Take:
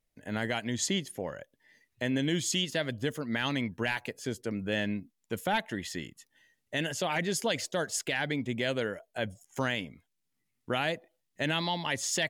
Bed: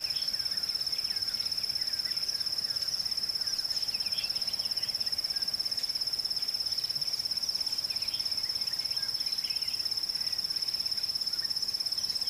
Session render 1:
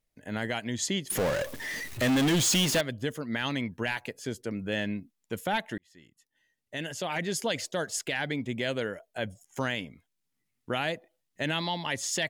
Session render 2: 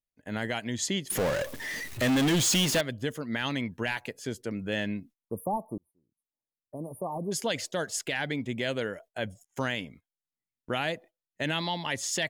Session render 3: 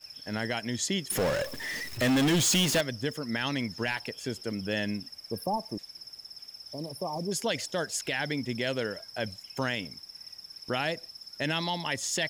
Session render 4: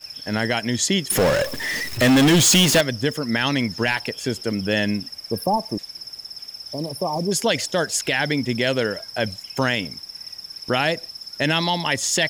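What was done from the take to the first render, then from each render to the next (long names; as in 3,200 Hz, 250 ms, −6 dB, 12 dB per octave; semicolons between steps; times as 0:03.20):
0:01.10–0:02.81: power curve on the samples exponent 0.35; 0:05.78–0:07.37: fade in
0:05.16–0:07.32: time-frequency box erased 1,200–8,800 Hz; noise gate −50 dBFS, range −16 dB
mix in bed −14 dB
level +9.5 dB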